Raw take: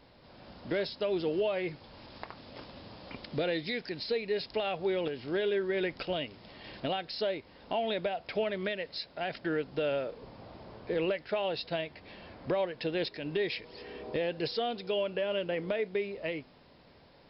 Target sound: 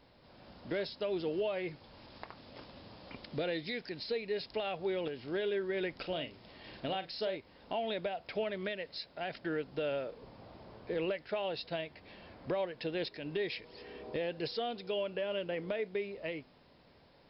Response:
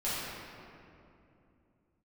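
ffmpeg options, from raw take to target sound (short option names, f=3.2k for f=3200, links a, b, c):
-filter_complex "[0:a]asettb=1/sr,asplit=3[a][b][c];[a]atrim=end=5.964[d];[b]atrim=start=5.96:end=7.36,asetpts=PTS-STARTPTS,afade=t=in:d=0.004:c=qsin,afade=t=out:st=1.396:d=0.004:c=qsin,asplit=2[e][f];[f]adelay=42,volume=-10.5dB[g];[e][g]amix=inputs=2:normalize=0,atrim=end_sample=61740[h];[c]atrim=start=7.356[i];[d][h]acrossfade=d=0.004:c1=hsin:c2=qsin[j];[j][i]acrossfade=d=0.004:c1=qsin:c2=hsin,volume=-4dB"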